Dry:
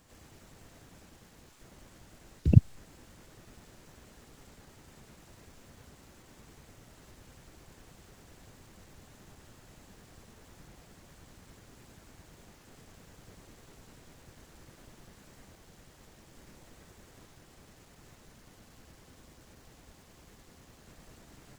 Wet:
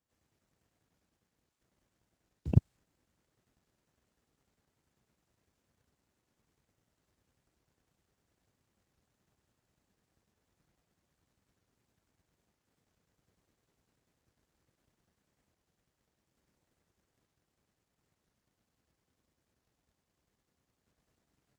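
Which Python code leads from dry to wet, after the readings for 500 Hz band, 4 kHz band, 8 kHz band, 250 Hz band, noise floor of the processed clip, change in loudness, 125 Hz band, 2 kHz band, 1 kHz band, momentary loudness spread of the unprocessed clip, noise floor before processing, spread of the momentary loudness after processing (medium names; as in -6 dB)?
-5.5 dB, under -15 dB, under -20 dB, -6.0 dB, -83 dBFS, -5.5 dB, -6.5 dB, -16.0 dB, -10.0 dB, 7 LU, -58 dBFS, 10 LU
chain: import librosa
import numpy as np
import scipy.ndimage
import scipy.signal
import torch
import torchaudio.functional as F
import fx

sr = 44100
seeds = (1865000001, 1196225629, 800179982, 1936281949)

y = fx.power_curve(x, sr, exponent=1.4)
y = scipy.signal.sosfilt(scipy.signal.butter(2, 46.0, 'highpass', fs=sr, output='sos'), y)
y = fx.record_warp(y, sr, rpm=45.0, depth_cents=100.0)
y = y * librosa.db_to_amplitude(-4.5)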